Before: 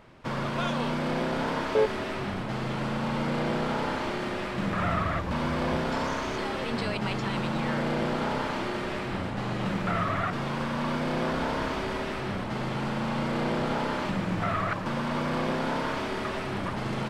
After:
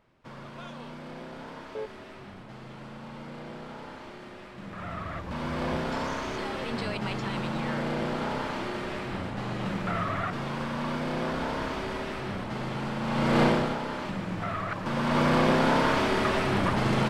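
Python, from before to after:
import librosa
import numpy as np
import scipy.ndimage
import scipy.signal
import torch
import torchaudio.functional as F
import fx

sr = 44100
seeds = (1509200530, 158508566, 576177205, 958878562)

y = fx.gain(x, sr, db=fx.line((4.6, -13.0), (5.64, -2.0), (13.0, -2.0), (13.42, 8.0), (13.79, -4.0), (14.68, -4.0), (15.22, 6.0)))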